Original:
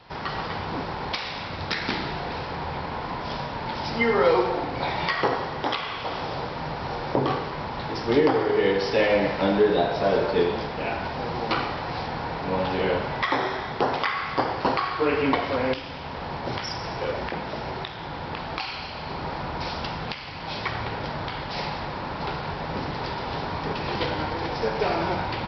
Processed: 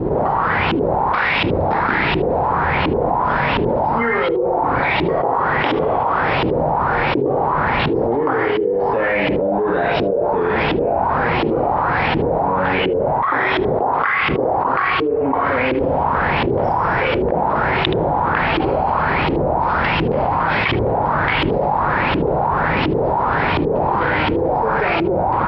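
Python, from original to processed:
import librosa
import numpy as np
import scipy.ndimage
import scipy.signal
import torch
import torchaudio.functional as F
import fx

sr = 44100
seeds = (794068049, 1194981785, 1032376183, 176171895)

y = fx.filter_lfo_lowpass(x, sr, shape='saw_up', hz=1.4, low_hz=320.0, high_hz=3100.0, q=3.9)
y = y + 10.0 ** (-21.5 / 20.0) * np.pad(y, (int(76 * sr / 1000.0), 0))[:len(y)]
y = fx.env_flatten(y, sr, amount_pct=100)
y = y * librosa.db_to_amplitude(-7.5)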